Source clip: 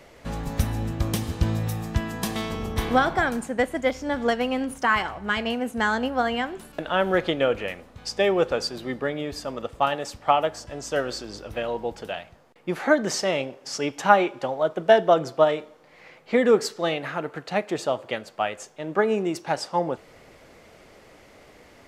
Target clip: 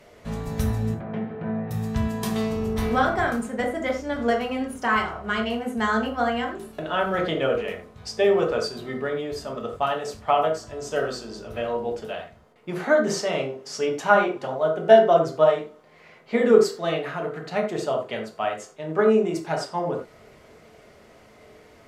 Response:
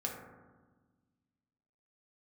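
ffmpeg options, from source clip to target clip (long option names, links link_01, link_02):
-filter_complex "[0:a]asettb=1/sr,asplit=3[link_01][link_02][link_03];[link_01]atrim=end=0.944[link_04];[link_02]atrim=start=0.94:end=1.71,asetpts=PTS-STARTPTS,afade=type=in:duration=0.004:curve=qsin,afade=type=out:start_time=0.766:duration=0.004:curve=qsin,highpass=frequency=170:width=0.5412,highpass=frequency=170:width=1.3066,equalizer=frequency=270:width_type=q:width=4:gain=-7,equalizer=frequency=720:width_type=q:width=4:gain=3,equalizer=frequency=1100:width_type=q:width=4:gain=-8,lowpass=frequency=2000:width=0.5412,lowpass=frequency=2000:width=1.3066[link_05];[link_03]atrim=start=1.706[link_06];[link_04][link_05]acrossfade=duration=0.004:curve1=hsin:curve2=qsin[link_07];[link_07][link_06]acrossfade=duration=0.004:curve1=qsin:curve2=hsin[link_08];[1:a]atrim=start_sample=2205,atrim=end_sample=3969,asetrate=37926,aresample=44100[link_09];[link_08][link_09]afir=irnorm=-1:irlink=0,volume=-2.5dB"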